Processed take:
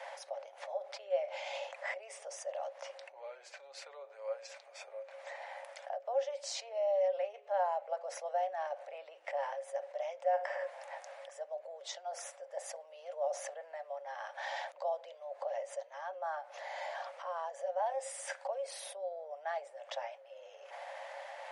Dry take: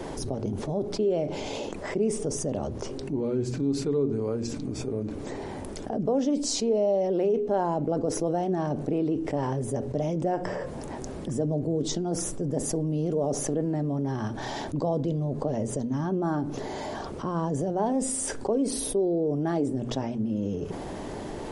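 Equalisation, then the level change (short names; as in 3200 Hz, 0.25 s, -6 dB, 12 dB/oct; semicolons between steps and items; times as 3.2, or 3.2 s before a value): rippled Chebyshev high-pass 530 Hz, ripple 9 dB; LPF 3200 Hz 6 dB/oct; notch 760 Hz, Q 12; +2.0 dB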